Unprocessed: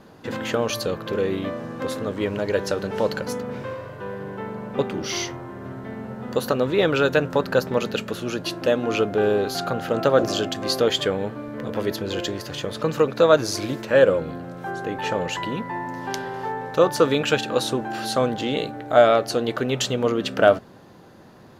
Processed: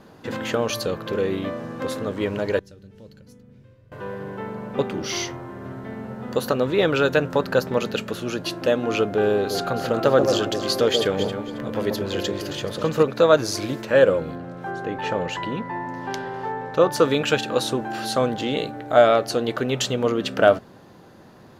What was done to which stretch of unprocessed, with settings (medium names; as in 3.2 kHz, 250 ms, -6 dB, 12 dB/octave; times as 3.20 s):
2.59–3.92 s: amplifier tone stack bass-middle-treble 10-0-1
9.37–13.03 s: echo whose repeats swap between lows and highs 135 ms, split 870 Hz, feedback 50%, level -4 dB
14.35–16.92 s: low-pass 4 kHz 6 dB/octave